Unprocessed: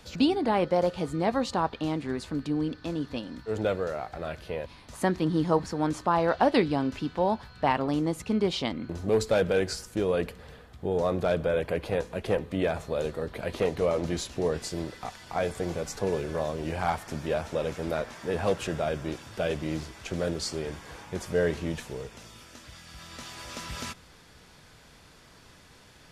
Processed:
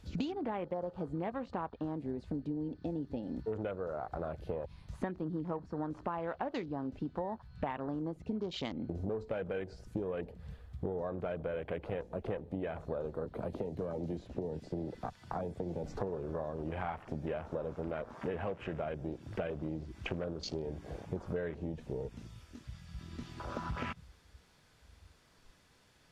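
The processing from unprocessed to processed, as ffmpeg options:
-filter_complex "[0:a]asettb=1/sr,asplit=3[s0][s1][s2];[s0]atrim=end=13.254[s3];[s1]atrim=start=13.25:end=15.84,asetpts=PTS-STARTPTS,afade=t=in:d=0.004:c=qsin,afade=t=out:st=2.586:d=0.004:c=qsin,acrossover=split=120|290|2400|5100[s4][s5][s6][s7][s8];[s4]acompressor=threshold=0.00282:ratio=3[s9];[s5]acompressor=threshold=0.0112:ratio=3[s10];[s6]acompressor=threshold=0.01:ratio=3[s11];[s7]acompressor=threshold=0.00224:ratio=3[s12];[s8]acompressor=threshold=0.00126:ratio=3[s13];[s9][s10][s11][s12][s13]amix=inputs=5:normalize=0[s14];[s2]atrim=start=15.836[s15];[s3][s14]acrossfade=d=0.004:c1=hsin:c2=qsin[s16];[s16][s15]acrossfade=d=0.004:c1=qsin:c2=hsin,acrossover=split=5200[s17][s18];[s18]acompressor=threshold=0.00141:ratio=4:attack=1:release=60[s19];[s17][s19]amix=inputs=2:normalize=0,afwtdn=0.0112,acompressor=threshold=0.0126:ratio=16,volume=1.68"

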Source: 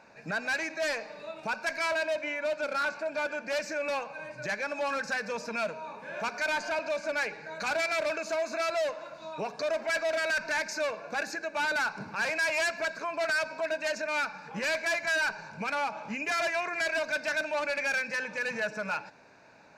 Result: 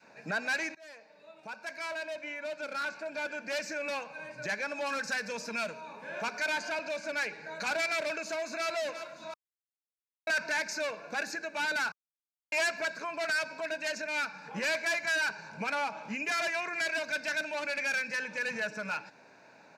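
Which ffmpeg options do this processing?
-filter_complex "[0:a]asettb=1/sr,asplit=3[s0][s1][s2];[s0]atrim=end=4.864[s3];[s1]atrim=start=4.86:end=5.81,asetpts=PTS-STARTPTS,afade=t=in:d=0.004:c=qsin,afade=t=out:st=0.946:d=0.004:c=qsin,highshelf=f=5300:g=5[s4];[s2]atrim=start=5.806[s5];[s3][s4]acrossfade=d=0.004:c1=hsin:c2=qsin[s6];[s6][s5]acrossfade=d=0.004:c1=qsin:c2=hsin,asplit=2[s7][s8];[s8]afade=t=in:st=8.25:d=0.01,afade=t=out:st=8.68:d=0.01,aecho=0:1:350|700|1050|1400|1750|2100:0.298538|0.164196|0.0903078|0.0496693|0.0273181|0.015025[s9];[s7][s9]amix=inputs=2:normalize=0,asplit=6[s10][s11][s12][s13][s14][s15];[s10]atrim=end=0.75,asetpts=PTS-STARTPTS,afade=t=out:st=0.746:d=0.004:c=hsin:silence=0.0630957[s16];[s11]atrim=start=0.75:end=9.34,asetpts=PTS-STARTPTS,afade=t=in:d=2.83:silence=0.0630957,afade=t=out:st=8.586:d=0.004:c=hsin[s17];[s12]atrim=start=9.34:end=10.27,asetpts=PTS-STARTPTS,volume=0[s18];[s13]atrim=start=10.27:end=11.92,asetpts=PTS-STARTPTS,afade=t=in:d=0.004:c=hsin,afade=t=out:st=1.646:d=0.004:c=hsin[s19];[s14]atrim=start=11.92:end=12.52,asetpts=PTS-STARTPTS,volume=0[s20];[s15]atrim=start=12.52,asetpts=PTS-STARTPTS,afade=t=in:d=0.004:c=hsin[s21];[s16][s17][s18][s19][s20][s21]concat=n=6:v=0:a=1,bandreject=f=1200:w=17,adynamicequalizer=threshold=0.00631:dfrequency=700:dqfactor=0.81:tfrequency=700:tqfactor=0.81:attack=5:release=100:ratio=0.375:range=3:mode=cutabove:tftype=bell,highpass=140"

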